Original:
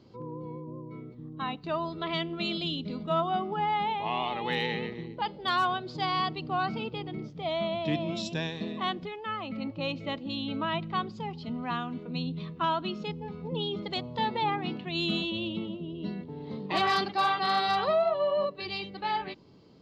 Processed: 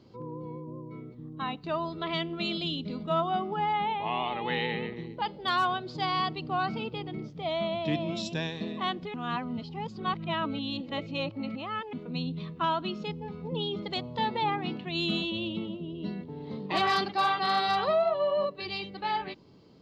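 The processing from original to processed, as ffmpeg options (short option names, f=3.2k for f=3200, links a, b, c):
-filter_complex "[0:a]asplit=3[a][b][c];[a]afade=t=out:st=3.72:d=0.02[d];[b]lowpass=f=3.8k:w=0.5412,lowpass=f=3.8k:w=1.3066,afade=t=in:st=3.72:d=0.02,afade=t=out:st=4.95:d=0.02[e];[c]afade=t=in:st=4.95:d=0.02[f];[d][e][f]amix=inputs=3:normalize=0,asplit=3[g][h][i];[g]atrim=end=9.142[j];[h]atrim=start=9.138:end=11.932,asetpts=PTS-STARTPTS,areverse[k];[i]atrim=start=11.928[l];[j][k]acrossfade=d=0.004:c1=hsin:c2=hsin[m];[m][l]acrossfade=d=0.004:c1=hsin:c2=hsin"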